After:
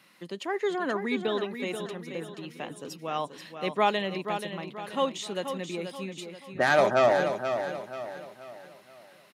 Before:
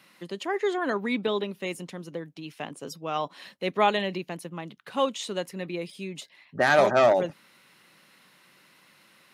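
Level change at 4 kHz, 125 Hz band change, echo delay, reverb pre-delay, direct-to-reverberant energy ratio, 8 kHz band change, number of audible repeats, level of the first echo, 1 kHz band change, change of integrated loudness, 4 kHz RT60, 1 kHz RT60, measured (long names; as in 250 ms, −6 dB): −1.0 dB, −1.5 dB, 482 ms, no reverb audible, no reverb audible, −1.5 dB, 4, −8.0 dB, −1.0 dB, −2.0 dB, no reverb audible, no reverb audible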